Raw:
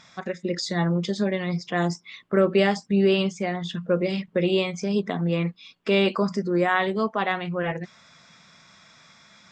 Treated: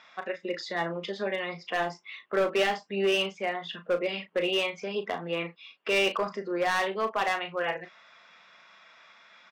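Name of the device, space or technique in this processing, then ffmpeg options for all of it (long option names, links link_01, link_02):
megaphone: -filter_complex "[0:a]highpass=510,lowpass=2900,equalizer=frequency=2800:width_type=o:width=0.24:gain=6.5,asoftclip=type=hard:threshold=-21dB,asplit=2[link_01][link_02];[link_02]adelay=36,volume=-10dB[link_03];[link_01][link_03]amix=inputs=2:normalize=0"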